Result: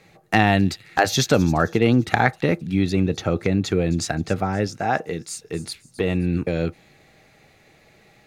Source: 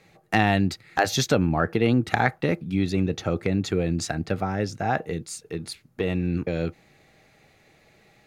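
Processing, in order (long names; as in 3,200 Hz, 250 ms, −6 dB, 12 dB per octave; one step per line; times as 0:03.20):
0:04.67–0:05.28: low-shelf EQ 120 Hz −11 dB
on a send: delay with a high-pass on its return 263 ms, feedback 40%, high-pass 5,300 Hz, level −13.5 dB
on the sum: level +3.5 dB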